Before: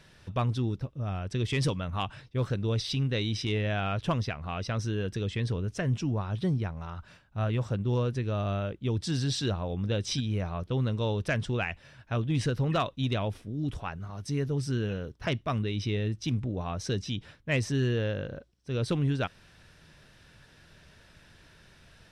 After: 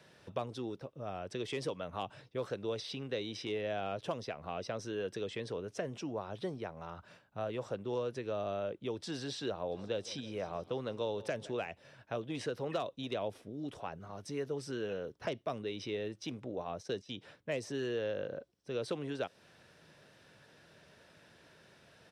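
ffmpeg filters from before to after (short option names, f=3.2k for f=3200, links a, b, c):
-filter_complex "[0:a]asplit=3[a][b][c];[a]afade=t=out:st=9.71:d=0.02[d];[b]aecho=1:1:161|322|483|644|805:0.0891|0.0517|0.03|0.0174|0.0101,afade=t=in:st=9.71:d=0.02,afade=t=out:st=11.66:d=0.02[e];[c]afade=t=in:st=11.66:d=0.02[f];[d][e][f]amix=inputs=3:normalize=0,asplit=3[g][h][i];[g]afade=t=out:st=16.54:d=0.02[j];[h]agate=range=-33dB:threshold=-32dB:ratio=3:release=100:detection=peak,afade=t=in:st=16.54:d=0.02,afade=t=out:st=17.09:d=0.02[k];[i]afade=t=in:st=17.09:d=0.02[l];[j][k][l]amix=inputs=3:normalize=0,highpass=130,equalizer=f=540:t=o:w=1.5:g=7,acrossover=split=320|770|3600[m][n][o][p];[m]acompressor=threshold=-43dB:ratio=4[q];[n]acompressor=threshold=-30dB:ratio=4[r];[o]acompressor=threshold=-40dB:ratio=4[s];[p]acompressor=threshold=-43dB:ratio=4[t];[q][r][s][t]amix=inputs=4:normalize=0,volume=-5dB"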